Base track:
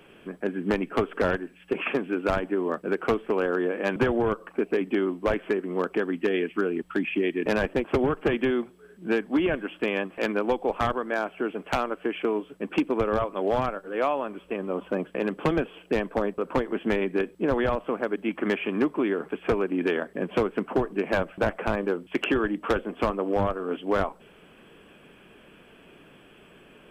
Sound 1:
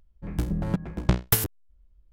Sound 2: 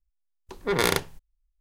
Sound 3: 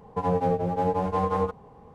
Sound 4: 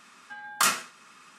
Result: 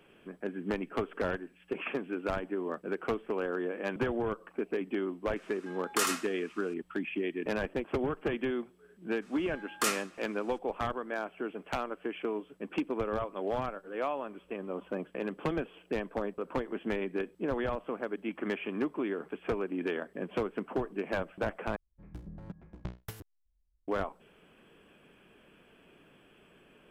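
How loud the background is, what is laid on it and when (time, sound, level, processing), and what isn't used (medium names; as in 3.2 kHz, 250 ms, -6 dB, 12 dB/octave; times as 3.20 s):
base track -8 dB
5.36 s: add 4 -7.5 dB + delay 79 ms -4 dB
9.21 s: add 4 -7.5 dB, fades 0.02 s
21.76 s: replace with 1 -18 dB + low-pass 3.4 kHz 6 dB/octave
not used: 2, 3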